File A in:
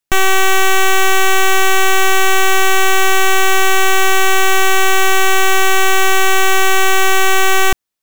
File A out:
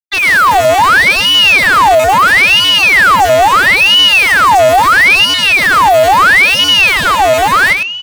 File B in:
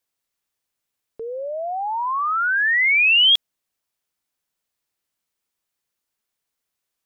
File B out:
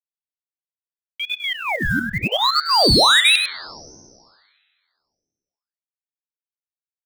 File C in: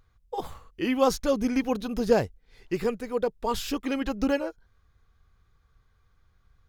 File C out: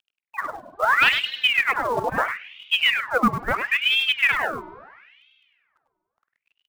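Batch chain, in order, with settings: random spectral dropouts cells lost 31%; low-pass opened by the level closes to 330 Hz, open at -10 dBFS; gate with hold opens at -45 dBFS; in parallel at +2 dB: compressor 6:1, threshold -19 dBFS; on the sum: soft clip -13 dBFS; companded quantiser 6-bit; on a send: echo 0.101 s -7 dB; on the sum: spring tank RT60 2 s, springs 49 ms, chirp 40 ms, DRR 13.5 dB; ring modulator with a swept carrier 1800 Hz, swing 65%, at 0.75 Hz; gain +4.5 dB

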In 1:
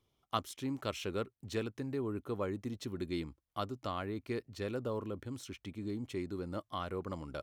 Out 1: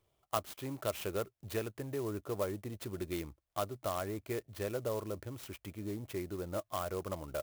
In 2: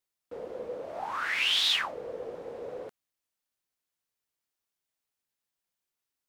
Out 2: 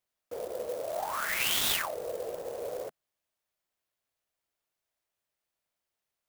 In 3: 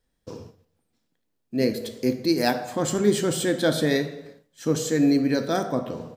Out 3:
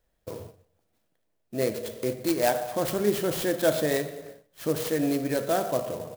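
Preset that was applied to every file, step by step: thirty-one-band EQ 160 Hz -4 dB, 250 Hz -10 dB, 630 Hz +8 dB; in parallel at -0.5 dB: compressor, threshold -34 dBFS; on the sum: clock jitter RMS 0.048 ms; gain -4.5 dB

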